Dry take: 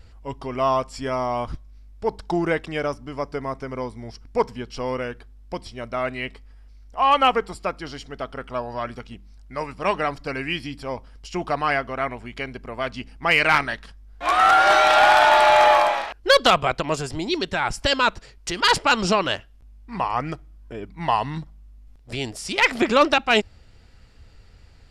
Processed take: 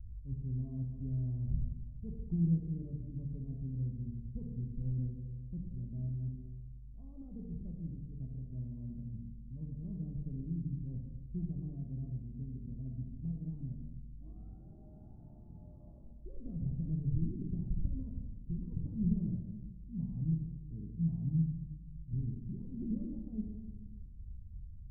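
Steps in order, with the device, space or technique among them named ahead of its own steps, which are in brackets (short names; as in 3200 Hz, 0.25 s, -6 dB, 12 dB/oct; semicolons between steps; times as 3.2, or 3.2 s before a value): club heard from the street (limiter -14.5 dBFS, peak gain reduction 7.5 dB; LPF 180 Hz 24 dB/oct; reverb RT60 1.4 s, pre-delay 15 ms, DRR 0 dB); gain -1.5 dB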